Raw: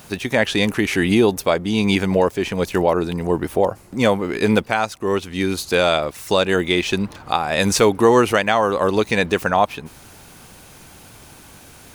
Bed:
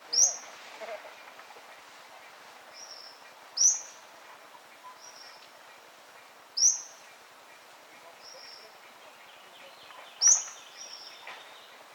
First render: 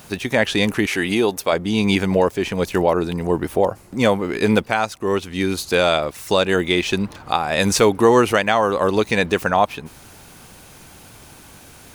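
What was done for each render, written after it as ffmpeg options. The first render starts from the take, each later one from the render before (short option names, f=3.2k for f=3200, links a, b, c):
-filter_complex "[0:a]asettb=1/sr,asplit=3[a][b][c];[a]atrim=end=0.864[d];[b]atrim=start=0.86:end=1.53,asetpts=PTS-STARTPTS,afade=t=in:d=0.004:c=qsin,afade=t=out:st=0.666:d=0.004:c=qsin,lowshelf=f=250:g=-10[e];[c]atrim=start=1.526[f];[d][e]acrossfade=d=0.004:c1=hsin:c2=qsin[g];[g][f]acrossfade=d=0.004:c1=qsin:c2=hsin"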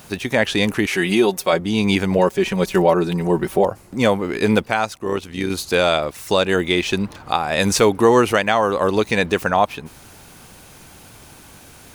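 -filter_complex "[0:a]asettb=1/sr,asplit=3[a][b][c];[a]atrim=end=0.934[d];[b]atrim=start=0.93:end=1.6,asetpts=PTS-STARTPTS,afade=t=in:d=0.004:c=qsin,afade=t=out:st=0.666:d=0.004:c=qsin,aecho=1:1:5.4:0.65,atrim=end_sample=29547[e];[c]atrim=start=1.596[f];[d][e]acrossfade=d=0.004:c1=hsin:c2=qsin[g];[g][f]acrossfade=d=0.004:c1=qsin:c2=hsin,asettb=1/sr,asplit=3[h][i][j];[h]atrim=end=2.184[k];[i]atrim=start=2.18:end=3.64,asetpts=PTS-STARTPTS,afade=t=in:d=0.004:c=qsin,afade=t=out:st=1.456:d=0.004:c=qsin,aecho=1:1:5.3:0.7,atrim=end_sample=64386[l];[j]atrim=start=3.636[m];[k][l]acrossfade=d=0.004:c1=hsin:c2=qsin[n];[n][m]acrossfade=d=0.004:c1=qsin:c2=hsin,asettb=1/sr,asplit=3[o][p][q];[o]atrim=end=4.974[r];[p]atrim=start=4.97:end=5.5,asetpts=PTS-STARTPTS,afade=t=in:d=0.004:c=qsin,afade=t=out:st=0.526:d=0.004:c=qsin,tremolo=f=64:d=0.571[s];[q]atrim=start=5.496[t];[r][s]acrossfade=d=0.004:c1=hsin:c2=qsin[u];[u][t]acrossfade=d=0.004:c1=qsin:c2=hsin"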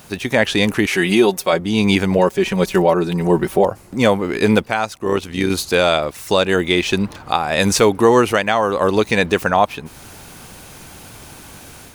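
-af "dynaudnorm=f=130:g=3:m=5dB"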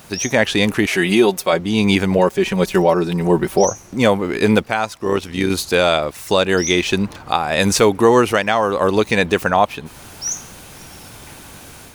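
-filter_complex "[1:a]volume=-3.5dB[a];[0:a][a]amix=inputs=2:normalize=0"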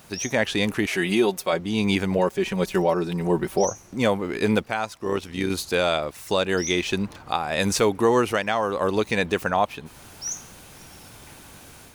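-af "volume=-7dB"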